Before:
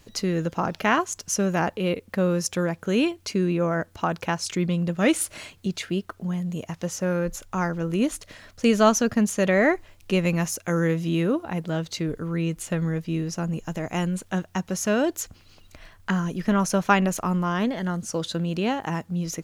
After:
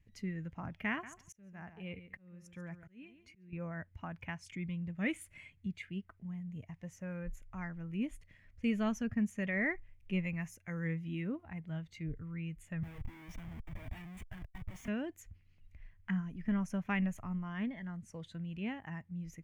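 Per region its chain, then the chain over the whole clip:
0.89–3.53 feedback echo 0.14 s, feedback 19%, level -12.5 dB + auto swell 0.73 s
12.83–14.88 HPF 220 Hz 24 dB/oct + Schmitt trigger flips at -42.5 dBFS
whole clip: passive tone stack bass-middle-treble 5-5-5; spectral noise reduction 7 dB; EQ curve 140 Hz 0 dB, 1400 Hz -20 dB, 2000 Hz -8 dB, 4000 Hz -30 dB; gain +11 dB

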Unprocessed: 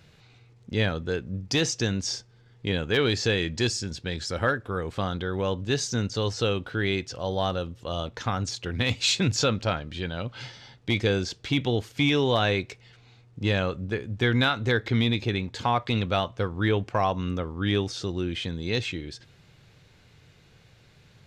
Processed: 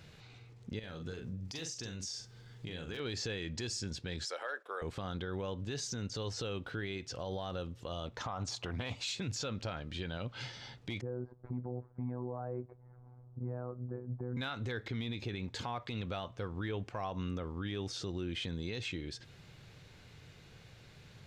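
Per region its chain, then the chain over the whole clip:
0.79–3 high shelf 4400 Hz +9 dB + compressor 12:1, threshold -35 dBFS + doubler 43 ms -6 dB
4.25–4.82 HPF 480 Hz 24 dB/oct + gate -50 dBFS, range -8 dB
8.18–9.03 band shelf 860 Hz +9 dB 1.3 oct + Doppler distortion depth 0.16 ms
11.01–14.37 inverse Chebyshev low-pass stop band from 2800 Hz, stop band 50 dB + robotiser 124 Hz
whole clip: compressor 1.5:1, threshold -45 dBFS; limiter -29.5 dBFS

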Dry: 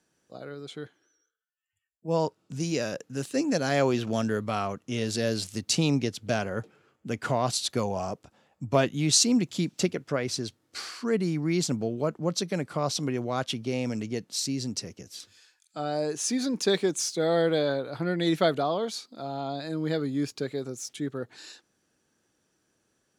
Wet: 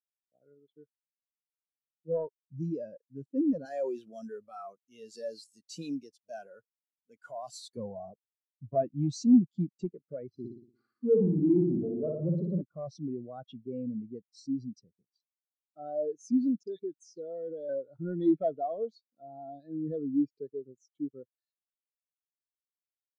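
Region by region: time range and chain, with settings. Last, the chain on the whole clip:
3.65–7.77 CVSD 64 kbps + RIAA curve recording + transient shaper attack -3 dB, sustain +3 dB
10.29–12.62 HPF 540 Hz 6 dB/oct + tilt -4.5 dB/oct + flutter echo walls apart 10 m, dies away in 1.3 s
16.63–17.69 compressor 4:1, threshold -28 dBFS + dispersion highs, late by 43 ms, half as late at 1400 Hz
whole clip: sample leveller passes 3; spectral expander 2.5:1; gain -3 dB

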